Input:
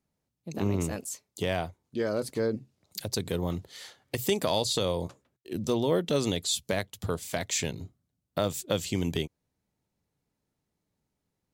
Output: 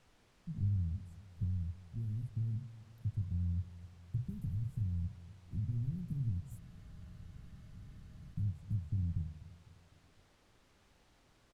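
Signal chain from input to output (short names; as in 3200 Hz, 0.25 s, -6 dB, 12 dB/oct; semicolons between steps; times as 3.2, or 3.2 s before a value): block floating point 3-bit; low-pass opened by the level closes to 2800 Hz, open at -23 dBFS; inverse Chebyshev band-stop 640–4100 Hz, stop band 80 dB; compressor 2.5:1, threshold -43 dBFS, peak gain reduction 9.5 dB; treble ducked by the level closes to 500 Hz, closed at -34 dBFS; high shelf 12000 Hz +12 dB; on a send: feedback echo 0.252 s, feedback 49%, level -17 dB; on the sum: added noise pink -75 dBFS; air absorption 55 m; de-hum 74.16 Hz, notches 37; spectral freeze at 6.62, 1.73 s; gain +8.5 dB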